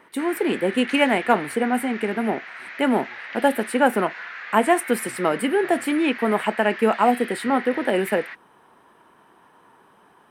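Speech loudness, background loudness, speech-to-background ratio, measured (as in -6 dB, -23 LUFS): -22.5 LUFS, -34.0 LUFS, 11.5 dB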